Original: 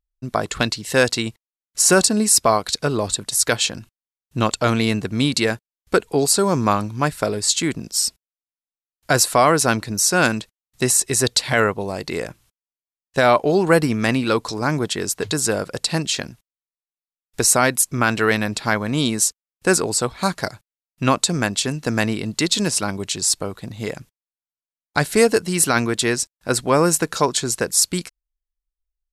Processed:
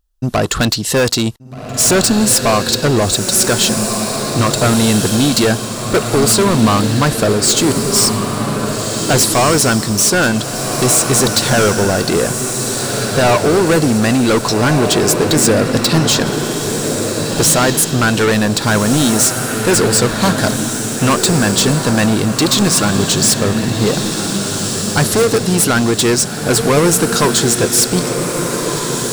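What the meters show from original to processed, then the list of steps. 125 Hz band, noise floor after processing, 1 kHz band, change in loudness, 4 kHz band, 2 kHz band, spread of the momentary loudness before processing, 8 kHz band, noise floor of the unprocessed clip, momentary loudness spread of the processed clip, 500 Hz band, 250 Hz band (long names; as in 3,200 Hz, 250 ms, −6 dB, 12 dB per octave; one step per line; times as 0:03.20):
+9.5 dB, −22 dBFS, +4.5 dB, +6.0 dB, +7.5 dB, +4.5 dB, 10 LU, +6.5 dB, below −85 dBFS, 7 LU, +6.0 dB, +8.5 dB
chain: parametric band 2,200 Hz −9.5 dB 0.41 octaves
in parallel at +2 dB: speech leveller within 4 dB
on the sum: soft clipping −15 dBFS, distortion −6 dB
floating-point word with a short mantissa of 8 bits
on a send: feedback delay with all-pass diffusion 1,596 ms, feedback 48%, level −5 dB
on the sum: level +5.5 dB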